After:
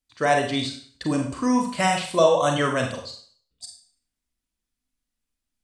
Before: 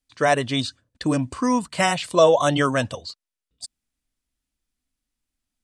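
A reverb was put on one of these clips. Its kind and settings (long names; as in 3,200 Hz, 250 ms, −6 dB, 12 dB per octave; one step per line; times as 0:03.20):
four-comb reverb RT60 0.48 s, combs from 32 ms, DRR 2.5 dB
level −3.5 dB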